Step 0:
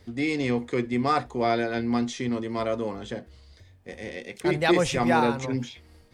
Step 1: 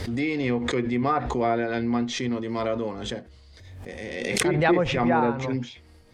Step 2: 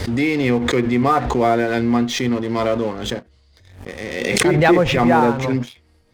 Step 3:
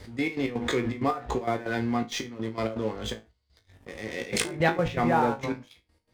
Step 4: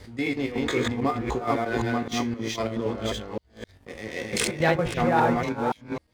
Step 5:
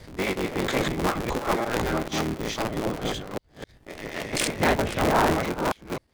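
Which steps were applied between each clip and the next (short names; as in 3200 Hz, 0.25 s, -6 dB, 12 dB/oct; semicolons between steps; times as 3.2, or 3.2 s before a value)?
treble ducked by the level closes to 1700 Hz, closed at -18.5 dBFS; backwards sustainer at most 38 dB/s
sample leveller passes 2
step gate "..x.x.xxxx.x" 163 bpm -12 dB; resonator 55 Hz, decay 0.21 s, harmonics all, mix 90%; gain -3 dB
reverse delay 0.26 s, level -1 dB
cycle switcher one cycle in 3, inverted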